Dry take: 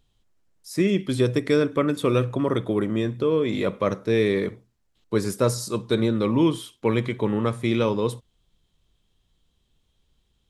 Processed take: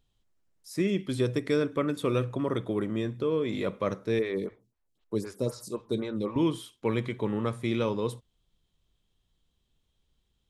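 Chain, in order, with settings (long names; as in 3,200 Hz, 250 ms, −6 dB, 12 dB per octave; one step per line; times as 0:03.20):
0:04.19–0:06.36: phaser with staggered stages 3.9 Hz
level −6 dB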